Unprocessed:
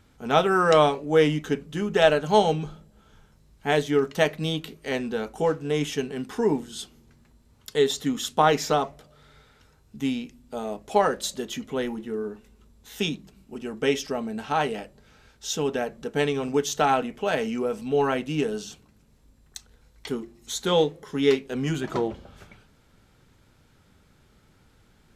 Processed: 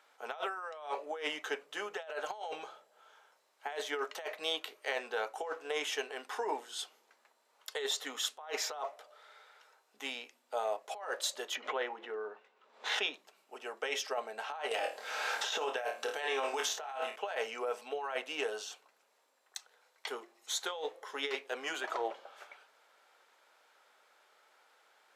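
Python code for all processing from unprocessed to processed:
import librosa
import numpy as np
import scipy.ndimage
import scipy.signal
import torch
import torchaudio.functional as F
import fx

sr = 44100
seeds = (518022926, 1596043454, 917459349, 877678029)

y = fx.chain(x, sr, fx.lowpass(hz=3300.0, slope=12),
    fx.pre_swell(db_per_s=75.0), at=(11.55, 13.14))
y = fx.chain(y, sr, fx.room_flutter(wall_m=4.5, rt60_s=0.27),
    fx.band_squash(depth_pct=100), at=(14.71, 17.16))
y = scipy.signal.sosfilt(scipy.signal.butter(4, 590.0, 'highpass', fs=sr, output='sos'), y)
y = fx.high_shelf(y, sr, hz=2900.0, db=-8.0)
y = fx.over_compress(y, sr, threshold_db=-34.0, ratio=-1.0)
y = y * librosa.db_to_amplitude(-3.0)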